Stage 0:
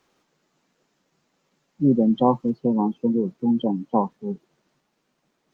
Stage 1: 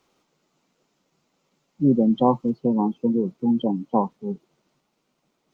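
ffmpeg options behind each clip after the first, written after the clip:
-af "equalizer=f=1.7k:t=o:w=0.24:g=-8.5"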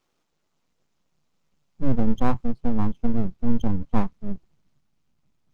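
-af "aeval=exprs='max(val(0),0)':c=same,asubboost=boost=7.5:cutoff=160,volume=-3dB"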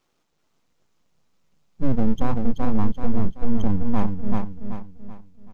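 -filter_complex "[0:a]asplit=2[a][b];[b]aecho=0:1:382|764|1146|1528|1910:0.501|0.19|0.0724|0.0275|0.0105[c];[a][c]amix=inputs=2:normalize=0,alimiter=level_in=9dB:limit=-1dB:release=50:level=0:latency=1,volume=-6.5dB"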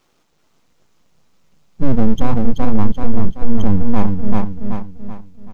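-af "acontrast=76,volume=2.5dB"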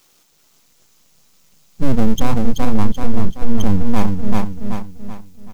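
-af "crystalizer=i=4.5:c=0,volume=-1dB"

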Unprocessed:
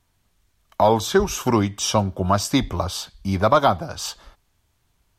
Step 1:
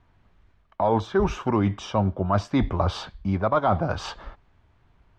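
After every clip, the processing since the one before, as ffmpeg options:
-af "lowpass=2k,areverse,acompressor=threshold=-28dB:ratio=4,areverse,volume=7.5dB"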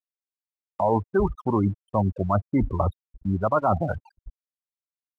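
-af "afftfilt=real='re*gte(hypot(re,im),0.1)':imag='im*gte(hypot(re,im),0.1)':win_size=1024:overlap=0.75,aeval=exprs='sgn(val(0))*max(abs(val(0))-0.00188,0)':c=same"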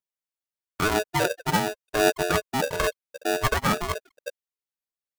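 -af "aphaser=in_gain=1:out_gain=1:delay=2.9:decay=0.62:speed=0.95:type=triangular,aeval=exprs='val(0)*sgn(sin(2*PI*530*n/s))':c=same,volume=-3.5dB"

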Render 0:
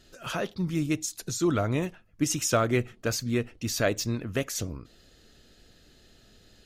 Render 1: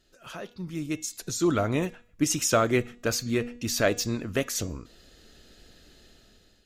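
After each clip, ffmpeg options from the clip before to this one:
-af "equalizer=f=120:t=o:w=0.78:g=-4.5,bandreject=f=241:t=h:w=4,bandreject=f=482:t=h:w=4,bandreject=f=723:t=h:w=4,bandreject=f=964:t=h:w=4,bandreject=f=1.205k:t=h:w=4,bandreject=f=1.446k:t=h:w=4,bandreject=f=1.687k:t=h:w=4,bandreject=f=1.928k:t=h:w=4,bandreject=f=2.169k:t=h:w=4,bandreject=f=2.41k:t=h:w=4,bandreject=f=2.651k:t=h:w=4,bandreject=f=2.892k:t=h:w=4,bandreject=f=3.133k:t=h:w=4,bandreject=f=3.374k:t=h:w=4,bandreject=f=3.615k:t=h:w=4,bandreject=f=3.856k:t=h:w=4,bandreject=f=4.097k:t=h:w=4,bandreject=f=4.338k:t=h:w=4,bandreject=f=4.579k:t=h:w=4,bandreject=f=4.82k:t=h:w=4,bandreject=f=5.061k:t=h:w=4,bandreject=f=5.302k:t=h:w=4,bandreject=f=5.543k:t=h:w=4,bandreject=f=5.784k:t=h:w=4,bandreject=f=6.025k:t=h:w=4,bandreject=f=6.266k:t=h:w=4,bandreject=f=6.507k:t=h:w=4,bandreject=f=6.748k:t=h:w=4,bandreject=f=6.989k:t=h:w=4,bandreject=f=7.23k:t=h:w=4,bandreject=f=7.471k:t=h:w=4,bandreject=f=7.712k:t=h:w=4,bandreject=f=7.953k:t=h:w=4,dynaudnorm=f=430:g=5:m=14dB,volume=-8.5dB"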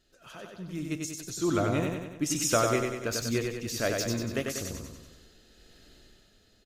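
-filter_complex "[0:a]tremolo=f=1.2:d=0.36,asplit=2[a][b];[b]aecho=0:1:95|190|285|380|475|570|665:0.631|0.347|0.191|0.105|0.0577|0.0318|0.0175[c];[a][c]amix=inputs=2:normalize=0,volume=-3dB"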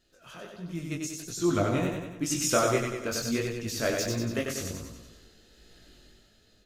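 -af "flanger=delay=17:depth=5.7:speed=1.4,volume=3.5dB"

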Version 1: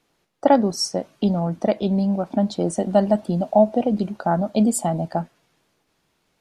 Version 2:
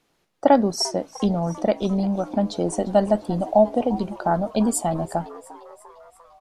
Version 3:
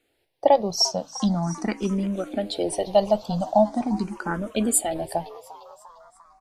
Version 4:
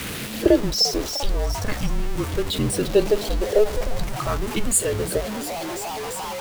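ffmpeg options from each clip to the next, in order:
-filter_complex "[0:a]asplit=6[a][b][c][d][e][f];[b]adelay=348,afreqshift=110,volume=-19dB[g];[c]adelay=696,afreqshift=220,volume=-23.6dB[h];[d]adelay=1044,afreqshift=330,volume=-28.2dB[i];[e]adelay=1392,afreqshift=440,volume=-32.7dB[j];[f]adelay=1740,afreqshift=550,volume=-37.3dB[k];[a][g][h][i][j][k]amix=inputs=6:normalize=0,asubboost=boost=6:cutoff=67"
-filter_complex "[0:a]acrossover=split=1700[a][b];[b]dynaudnorm=f=230:g=7:m=8dB[c];[a][c]amix=inputs=2:normalize=0,asplit=2[d][e];[e]afreqshift=0.42[f];[d][f]amix=inputs=2:normalize=1"
-af "aeval=exprs='val(0)+0.5*0.0596*sgn(val(0))':c=same,afreqshift=-220"

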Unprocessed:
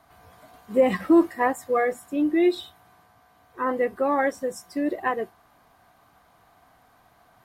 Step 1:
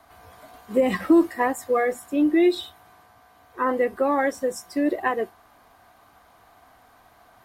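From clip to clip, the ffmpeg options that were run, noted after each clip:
-filter_complex "[0:a]acrossover=split=310|3000[a][b][c];[b]acompressor=threshold=-23dB:ratio=6[d];[a][d][c]amix=inputs=3:normalize=0,equalizer=f=150:t=o:w=0.74:g=-7.5,volume=4dB"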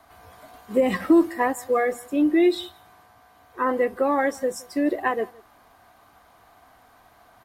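-filter_complex "[0:a]asplit=2[a][b];[b]adelay=169.1,volume=-24dB,highshelf=f=4k:g=-3.8[c];[a][c]amix=inputs=2:normalize=0"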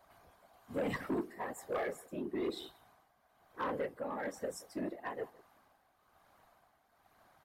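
-af "tremolo=f=1.1:d=0.57,afftfilt=real='hypot(re,im)*cos(2*PI*random(0))':imag='hypot(re,im)*sin(2*PI*random(1))':win_size=512:overlap=0.75,asoftclip=type=tanh:threshold=-24.5dB,volume=-5dB"

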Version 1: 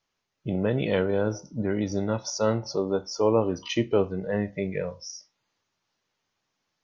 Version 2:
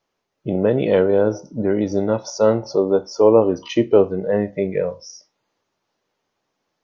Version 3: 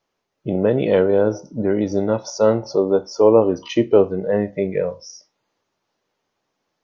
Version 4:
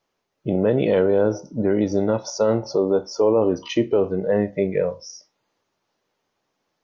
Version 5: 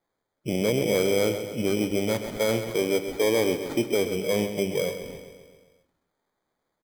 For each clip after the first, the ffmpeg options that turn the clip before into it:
-af "equalizer=f=470:t=o:w=2.5:g=10"
-af anull
-af "alimiter=limit=-9.5dB:level=0:latency=1:release=37"
-filter_complex "[0:a]acrusher=samples=16:mix=1:aa=0.000001,aeval=exprs='0.335*(cos(1*acos(clip(val(0)/0.335,-1,1)))-cos(1*PI/2))+0.00422*(cos(5*acos(clip(val(0)/0.335,-1,1)))-cos(5*PI/2))':c=same,asplit=2[a][b];[b]aecho=0:1:132|264|396|528|660|792|924:0.316|0.187|0.11|0.0649|0.0383|0.0226|0.0133[c];[a][c]amix=inputs=2:normalize=0,volume=-5.5dB"

